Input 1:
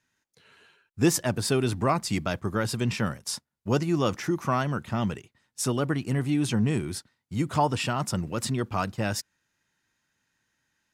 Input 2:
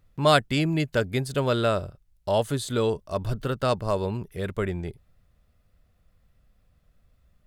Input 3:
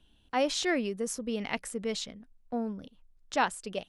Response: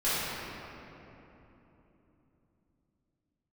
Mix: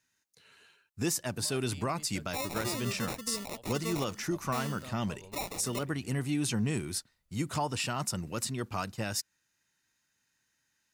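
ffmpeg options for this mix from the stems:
-filter_complex "[0:a]bandreject=frequency=3300:width=17,volume=-6dB[link_01];[1:a]acompressor=threshold=-33dB:ratio=2.5,adelay=1200,volume=-17.5dB[link_02];[2:a]aexciter=amount=1.8:drive=9.7:freq=9100,acrusher=samples=28:mix=1:aa=0.000001,adelay=2000,volume=-4.5dB[link_03];[link_01][link_02][link_03]amix=inputs=3:normalize=0,highshelf=frequency=2900:gain=9.5,alimiter=limit=-20.5dB:level=0:latency=1:release=211"

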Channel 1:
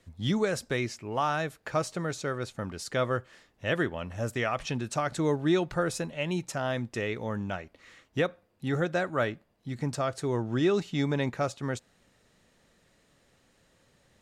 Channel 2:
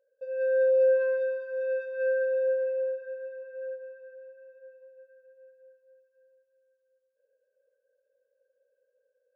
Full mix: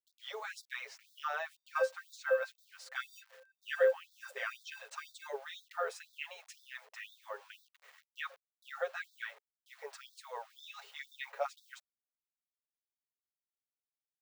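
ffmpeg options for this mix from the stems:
ffmpeg -i stem1.wav -i stem2.wav -filter_complex "[0:a]aecho=1:1:7.3:0.93,acrusher=bits=7:mix=0:aa=0.000001,volume=-6.5dB,asplit=2[link_01][link_02];[1:a]highshelf=frequency=1500:width_type=q:width=1.5:gain=6.5,aeval=exprs='val(0)*gte(abs(val(0)),0.00944)':channel_layout=same,adelay=1350,volume=1.5dB[link_03];[link_02]apad=whole_len=471956[link_04];[link_03][link_04]sidechaingate=range=-33dB:threshold=-34dB:ratio=16:detection=peak[link_05];[link_01][link_05]amix=inputs=2:normalize=0,equalizer=frequency=10000:width=0.35:gain=-12,afftfilt=real='re*gte(b*sr/1024,400*pow(3500/400,0.5+0.5*sin(2*PI*2*pts/sr)))':imag='im*gte(b*sr/1024,400*pow(3500/400,0.5+0.5*sin(2*PI*2*pts/sr)))':win_size=1024:overlap=0.75" out.wav

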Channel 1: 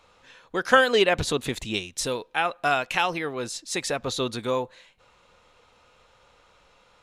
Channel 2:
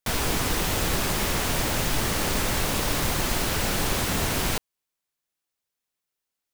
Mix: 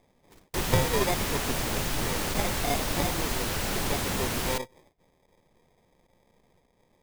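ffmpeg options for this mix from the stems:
ffmpeg -i stem1.wav -i stem2.wav -filter_complex "[0:a]aeval=exprs='if(lt(val(0),0),0.447*val(0),val(0))':channel_layout=same,highshelf=frequency=10000:gain=-3.5,acrusher=samples=31:mix=1:aa=0.000001,volume=-4.5dB,asplit=2[link_01][link_02];[1:a]volume=-4.5dB[link_03];[link_02]apad=whole_len=288413[link_04];[link_03][link_04]sidechaingate=range=-54dB:threshold=-53dB:ratio=16:detection=peak[link_05];[link_01][link_05]amix=inputs=2:normalize=0" out.wav

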